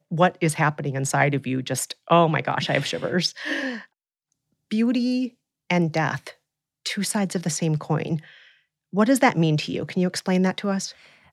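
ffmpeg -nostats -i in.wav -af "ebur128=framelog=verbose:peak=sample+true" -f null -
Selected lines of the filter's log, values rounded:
Integrated loudness:
  I:         -23.4 LUFS
  Threshold: -33.9 LUFS
Loudness range:
  LRA:         3.9 LU
  Threshold: -44.6 LUFS
  LRA low:   -26.6 LUFS
  LRA high:  -22.7 LUFS
Sample peak:
  Peak:       -3.6 dBFS
True peak:
  Peak:       -3.6 dBFS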